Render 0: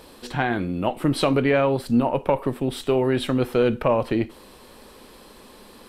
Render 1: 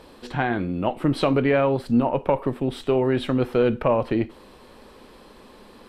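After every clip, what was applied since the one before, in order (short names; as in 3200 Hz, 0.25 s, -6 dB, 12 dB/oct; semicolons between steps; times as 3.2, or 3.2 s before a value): LPF 3100 Hz 6 dB/oct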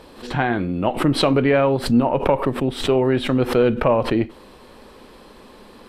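backwards sustainer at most 130 dB/s; gain +3 dB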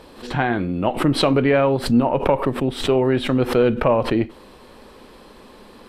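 nothing audible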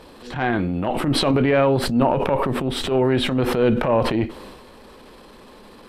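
transient shaper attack -11 dB, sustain +6 dB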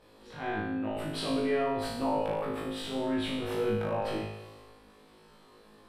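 resonator 53 Hz, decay 0.95 s, harmonics all, mix 100%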